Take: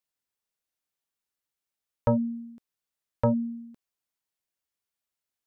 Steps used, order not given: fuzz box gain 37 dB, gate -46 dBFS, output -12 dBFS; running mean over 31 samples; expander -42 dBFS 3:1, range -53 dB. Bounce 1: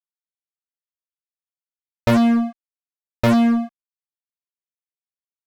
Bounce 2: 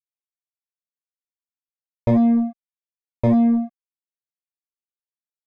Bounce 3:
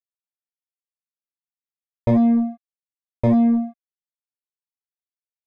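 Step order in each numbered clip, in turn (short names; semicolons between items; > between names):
expander > running mean > fuzz box; expander > fuzz box > running mean; fuzz box > expander > running mean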